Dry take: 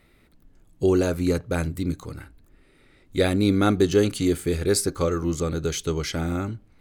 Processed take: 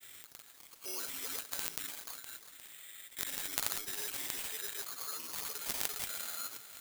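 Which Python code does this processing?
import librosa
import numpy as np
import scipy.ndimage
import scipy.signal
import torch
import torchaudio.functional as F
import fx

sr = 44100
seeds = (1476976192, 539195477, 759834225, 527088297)

p1 = scipy.signal.sosfilt(scipy.signal.butter(2, 1400.0, 'highpass', fs=sr, output='sos'), x)
p2 = fx.high_shelf(p1, sr, hz=12000.0, db=10.0)
p3 = fx.notch(p2, sr, hz=4500.0, q=12.0)
p4 = p3 + 0.59 * np.pad(p3, (int(7.2 * sr / 1000.0), 0))[:len(p3)]
p5 = fx.rider(p4, sr, range_db=4, speed_s=0.5)
p6 = p4 + (p5 * librosa.db_to_amplitude(-0.5))
p7 = fx.cheby_harmonics(p6, sr, harmonics=(3,), levels_db=(-9,), full_scale_db=-3.0)
p8 = fx.granulator(p7, sr, seeds[0], grain_ms=100.0, per_s=20.0, spray_ms=100.0, spread_st=0)
p9 = p8 + fx.echo_feedback(p8, sr, ms=355, feedback_pct=49, wet_db=-24, dry=0)
p10 = (np.kron(p9[::8], np.eye(8)[0]) * 8)[:len(p9)]
y = fx.env_flatten(p10, sr, amount_pct=50)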